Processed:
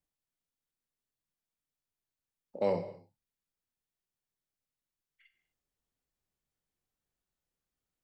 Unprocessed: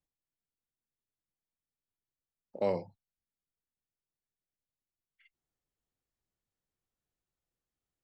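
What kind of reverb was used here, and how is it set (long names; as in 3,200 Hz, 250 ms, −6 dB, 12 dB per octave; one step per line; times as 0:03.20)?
reverb whose tail is shaped and stops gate 280 ms falling, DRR 7.5 dB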